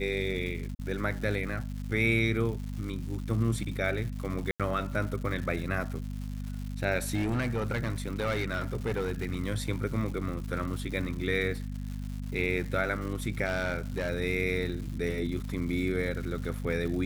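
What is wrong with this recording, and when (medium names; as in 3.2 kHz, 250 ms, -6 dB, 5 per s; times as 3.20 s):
crackle 270 per s -38 dBFS
hum 50 Hz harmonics 5 -36 dBFS
0.75–0.79 s: dropout 40 ms
4.51–4.60 s: dropout 87 ms
7.14–9.37 s: clipped -25 dBFS
13.46–14.10 s: clipped -25 dBFS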